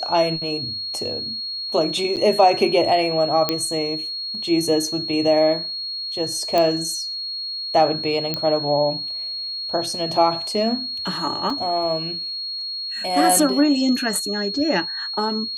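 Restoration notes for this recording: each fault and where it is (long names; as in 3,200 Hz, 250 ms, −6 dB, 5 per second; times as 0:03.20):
whistle 4,300 Hz −26 dBFS
0:02.16–0:02.17: drop-out 8 ms
0:03.49: click −4 dBFS
0:06.58: click −7 dBFS
0:08.34: click −9 dBFS
0:11.50: drop-out 2.9 ms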